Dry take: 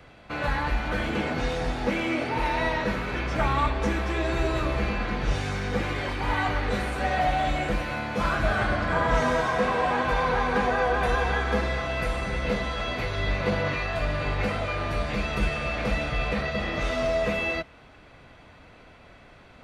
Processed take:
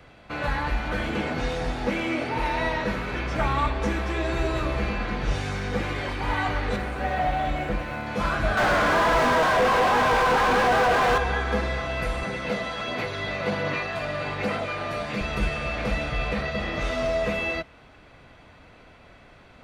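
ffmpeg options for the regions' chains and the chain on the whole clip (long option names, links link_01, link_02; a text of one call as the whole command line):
ffmpeg -i in.wav -filter_complex "[0:a]asettb=1/sr,asplit=3[link_01][link_02][link_03];[link_01]atrim=end=6.764[link_04];[link_02]atrim=start=6.76:end=8.07,asetpts=PTS-STARTPTS,afade=type=in:duration=0.004:curve=qsin,afade=type=out:start_time=1.306:duration=0.004:curve=qsin,highshelf=frequency=4600:gain=-12,aeval=exprs='sgn(val(0))*max(abs(val(0))-0.00299,0)':channel_layout=same[link_05];[link_03]atrim=start=8.066[link_06];[link_04][link_05]acrossfade=duration=0.004:curve1=hsin:curve2=qsin[link_07];[link_07][link_06]acrossfade=duration=0.004:curve1=qsin:curve2=hsin,asettb=1/sr,asplit=3[link_08][link_09][link_10];[link_08]atrim=end=8.574[link_11];[link_09]atrim=start=8.57:end=11.18,asetpts=PTS-STARTPTS,afade=type=in:duration=0.004:curve=qsin,afade=type=out:start_time=2.606:duration=0.004:curve=qsin,flanger=delay=16.5:depth=7.1:speed=1.4,asplit=2[link_12][link_13];[link_13]highpass=frequency=720:poles=1,volume=38dB,asoftclip=type=tanh:threshold=-12.5dB[link_14];[link_12][link_14]amix=inputs=2:normalize=0,lowpass=frequency=1400:poles=1,volume=-6dB[link_15];[link_10]atrim=start=11.176[link_16];[link_11][link_15]acrossfade=duration=0.004:curve1=hsin:curve2=qsin[link_17];[link_17][link_16]acrossfade=duration=0.004:curve1=qsin:curve2=hsin,asettb=1/sr,asplit=3[link_18][link_19][link_20];[link_18]atrim=end=12.234[link_21];[link_19]atrim=start=12.23:end=15.21,asetpts=PTS-STARTPTS,afade=type=in:duration=0.004:curve=qsin,afade=type=out:start_time=2.976:duration=0.004:curve=qsin,highpass=150,aphaser=in_gain=1:out_gain=1:delay=1.6:decay=0.23:speed=1.3:type=sinusoidal[link_22];[link_20]atrim=start=15.206[link_23];[link_21][link_22]acrossfade=duration=0.004:curve1=hsin:curve2=qsin[link_24];[link_24][link_23]acrossfade=duration=0.004:curve1=qsin:curve2=hsin" out.wav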